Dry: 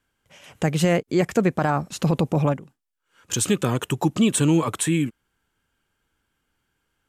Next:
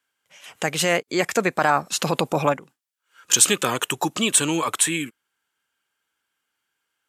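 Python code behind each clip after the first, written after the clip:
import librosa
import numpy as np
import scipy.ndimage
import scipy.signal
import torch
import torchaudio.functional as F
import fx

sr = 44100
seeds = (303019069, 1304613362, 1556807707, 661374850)

y = fx.noise_reduce_blind(x, sr, reduce_db=6)
y = fx.highpass(y, sr, hz=1200.0, slope=6)
y = fx.rider(y, sr, range_db=10, speed_s=2.0)
y = F.gain(torch.from_numpy(y), 7.5).numpy()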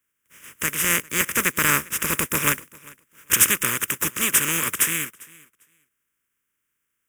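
y = fx.spec_flatten(x, sr, power=0.25)
y = fx.fixed_phaser(y, sr, hz=1800.0, stages=4)
y = fx.echo_feedback(y, sr, ms=399, feedback_pct=18, wet_db=-23.5)
y = F.gain(torch.from_numpy(y), 3.0).numpy()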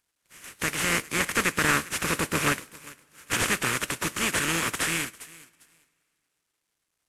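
y = fx.cvsd(x, sr, bps=64000)
y = fx.rev_double_slope(y, sr, seeds[0], early_s=0.33, late_s=2.7, knee_db=-21, drr_db=16.5)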